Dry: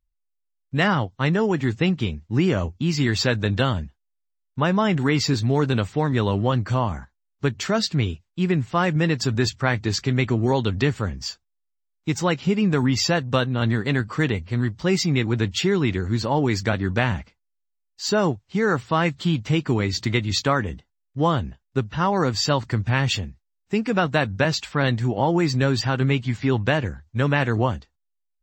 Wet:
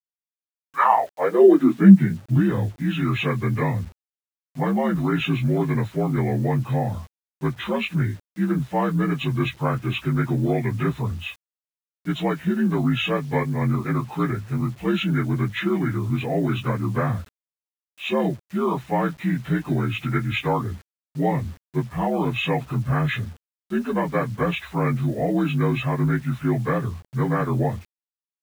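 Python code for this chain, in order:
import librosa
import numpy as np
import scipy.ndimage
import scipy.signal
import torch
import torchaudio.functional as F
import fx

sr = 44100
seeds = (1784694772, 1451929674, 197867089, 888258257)

y = fx.partial_stretch(x, sr, pct=80)
y = fx.filter_sweep_highpass(y, sr, from_hz=2500.0, to_hz=60.0, start_s=0.17, end_s=2.73, q=6.1)
y = fx.quant_dither(y, sr, seeds[0], bits=8, dither='none')
y = y * librosa.db_to_amplitude(-1.0)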